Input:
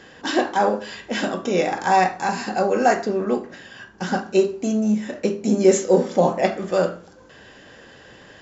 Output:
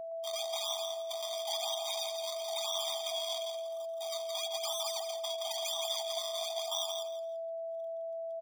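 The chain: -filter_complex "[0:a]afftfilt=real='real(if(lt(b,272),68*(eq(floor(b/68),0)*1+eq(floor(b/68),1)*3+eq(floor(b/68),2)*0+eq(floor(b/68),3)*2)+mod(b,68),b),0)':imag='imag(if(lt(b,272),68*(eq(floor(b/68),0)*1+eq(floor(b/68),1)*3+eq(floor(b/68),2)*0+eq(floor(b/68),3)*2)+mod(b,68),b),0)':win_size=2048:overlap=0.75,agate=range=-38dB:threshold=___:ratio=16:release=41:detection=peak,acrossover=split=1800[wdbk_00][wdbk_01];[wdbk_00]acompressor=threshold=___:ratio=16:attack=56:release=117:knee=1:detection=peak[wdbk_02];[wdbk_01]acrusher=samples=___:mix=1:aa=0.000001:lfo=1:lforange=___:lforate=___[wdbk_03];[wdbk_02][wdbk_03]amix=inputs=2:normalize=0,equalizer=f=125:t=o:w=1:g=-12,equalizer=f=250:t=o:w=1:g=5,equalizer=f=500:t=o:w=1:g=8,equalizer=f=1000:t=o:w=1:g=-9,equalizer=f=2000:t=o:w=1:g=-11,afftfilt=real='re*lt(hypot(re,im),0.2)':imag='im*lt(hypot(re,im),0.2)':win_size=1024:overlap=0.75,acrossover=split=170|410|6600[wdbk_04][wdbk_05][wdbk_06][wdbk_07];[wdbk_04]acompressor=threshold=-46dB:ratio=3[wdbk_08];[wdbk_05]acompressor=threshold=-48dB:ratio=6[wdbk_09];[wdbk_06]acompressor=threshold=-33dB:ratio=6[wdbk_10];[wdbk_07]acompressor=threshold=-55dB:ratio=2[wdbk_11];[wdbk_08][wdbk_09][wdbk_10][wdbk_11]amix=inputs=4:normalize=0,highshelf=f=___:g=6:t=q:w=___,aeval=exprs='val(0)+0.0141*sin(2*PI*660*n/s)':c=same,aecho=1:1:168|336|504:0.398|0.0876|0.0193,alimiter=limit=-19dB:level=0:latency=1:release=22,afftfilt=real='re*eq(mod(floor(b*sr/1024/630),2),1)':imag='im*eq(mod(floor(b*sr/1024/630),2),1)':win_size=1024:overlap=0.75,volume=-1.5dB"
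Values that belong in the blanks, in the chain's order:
-44dB, -42dB, 38, 38, 0.99, 2400, 3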